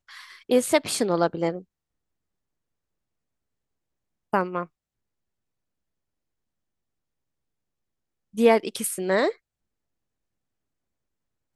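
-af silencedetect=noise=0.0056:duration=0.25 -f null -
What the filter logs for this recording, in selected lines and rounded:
silence_start: 1.62
silence_end: 4.33 | silence_duration: 2.71
silence_start: 4.66
silence_end: 8.34 | silence_duration: 3.68
silence_start: 9.35
silence_end: 11.55 | silence_duration: 2.20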